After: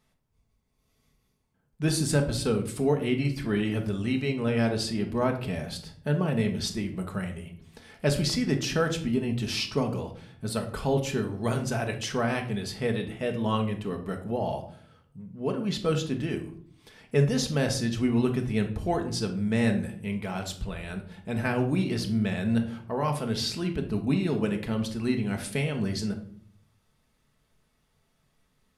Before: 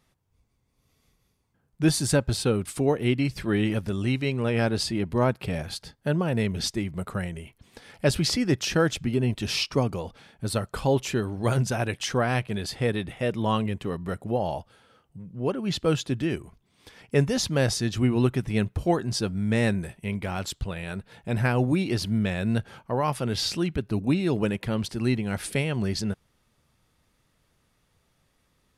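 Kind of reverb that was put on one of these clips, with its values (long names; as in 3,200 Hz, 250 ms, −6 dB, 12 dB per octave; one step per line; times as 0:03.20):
rectangular room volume 820 cubic metres, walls furnished, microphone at 1.5 metres
level −4 dB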